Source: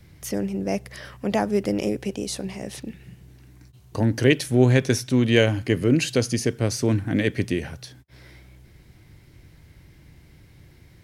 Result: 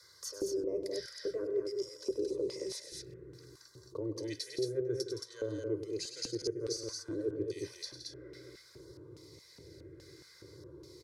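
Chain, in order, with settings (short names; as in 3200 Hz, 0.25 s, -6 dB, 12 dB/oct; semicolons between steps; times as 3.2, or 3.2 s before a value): HPF 66 Hz; comb 2 ms, depth 94%; reverse; compressor 12:1, threshold -26 dBFS, peak gain reduction 18 dB; reverse; LFO notch saw down 0.58 Hz 650–2700 Hz; fixed phaser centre 760 Hz, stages 6; small resonant body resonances 1200/2700 Hz, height 12 dB, ringing for 40 ms; LFO band-pass square 1.2 Hz 310–4600 Hz; on a send: loudspeakers at several distances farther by 34 m -11 dB, 57 m -11 dB, 76 m -4 dB; on the sum: three-band squash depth 40%; gain +3.5 dB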